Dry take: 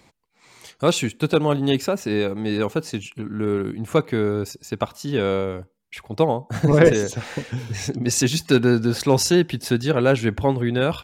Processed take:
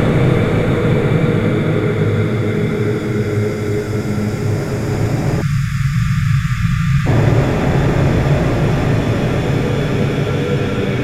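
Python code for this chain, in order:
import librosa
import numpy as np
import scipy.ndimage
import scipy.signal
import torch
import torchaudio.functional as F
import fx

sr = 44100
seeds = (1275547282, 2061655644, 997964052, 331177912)

y = fx.dmg_wind(x, sr, seeds[0], corner_hz=560.0, level_db=-16.0)
y = fx.graphic_eq(y, sr, hz=(125, 1000, 2000), db=(11, -5, 7))
y = fx.paulstretch(y, sr, seeds[1], factor=8.8, window_s=1.0, from_s=3.94)
y = fx.spec_erase(y, sr, start_s=5.42, length_s=1.65, low_hz=210.0, high_hz=1100.0)
y = y * librosa.db_to_amplitude(2.0)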